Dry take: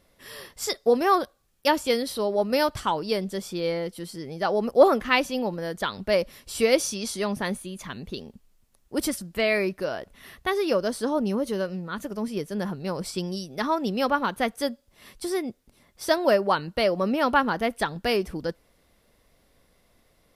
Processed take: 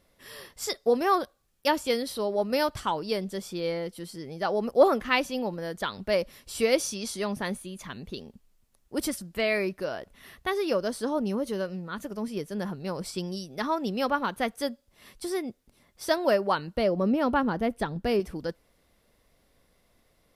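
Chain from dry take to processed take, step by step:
0:16.77–0:18.20: tilt shelving filter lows +6 dB, about 640 Hz
level −3 dB

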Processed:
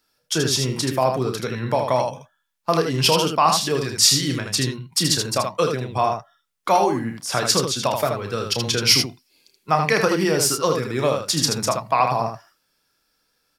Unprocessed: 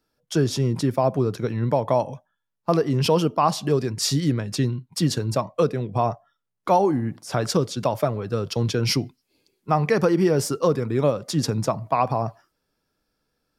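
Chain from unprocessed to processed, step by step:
tilt shelving filter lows −7 dB, about 920 Hz
ambience of single reflections 31 ms −9 dB, 79 ms −5.5 dB
level +2.5 dB

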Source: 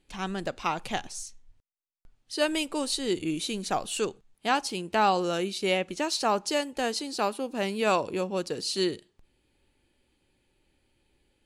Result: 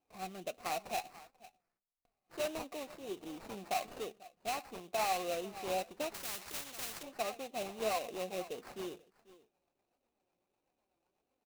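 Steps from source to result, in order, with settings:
low-shelf EQ 310 Hz +8.5 dB
in parallel at −9 dB: gain into a clipping stage and back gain 29.5 dB
on the sum: formant filter a
on a send: single-tap delay 490 ms −20 dB
on the sum: rotating-speaker cabinet horn 0.75 Hz, later 8 Hz, at 0:05.26
sample-rate reduction 3,300 Hz, jitter 20%
brickwall limiter −30 dBFS, peak gain reduction 10 dB
flanger 1.5 Hz, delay 3.7 ms, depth 2.3 ms, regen +61%
0:06.14–0:07.03: every bin compressed towards the loudest bin 4 to 1
level +6.5 dB

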